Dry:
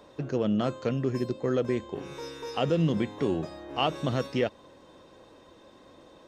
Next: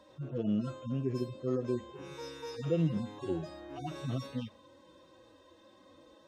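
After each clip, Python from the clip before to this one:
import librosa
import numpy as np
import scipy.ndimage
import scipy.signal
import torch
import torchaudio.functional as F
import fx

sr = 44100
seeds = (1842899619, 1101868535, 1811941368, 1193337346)

y = fx.hpss_only(x, sr, part='harmonic')
y = F.gain(torch.from_numpy(y), -4.0).numpy()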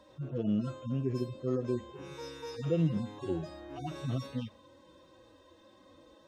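y = fx.low_shelf(x, sr, hz=73.0, db=7.5)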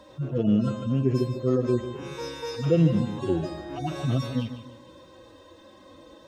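y = fx.echo_feedback(x, sr, ms=149, feedback_pct=36, wet_db=-11.0)
y = F.gain(torch.from_numpy(y), 8.5).numpy()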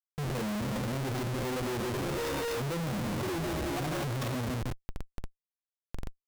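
y = fx.schmitt(x, sr, flips_db=-39.5)
y = F.gain(torch.from_numpy(y), -5.5).numpy()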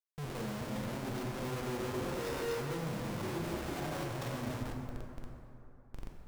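y = fx.rev_plate(x, sr, seeds[0], rt60_s=3.0, hf_ratio=0.45, predelay_ms=0, drr_db=1.0)
y = F.gain(torch.from_numpy(y), -7.5).numpy()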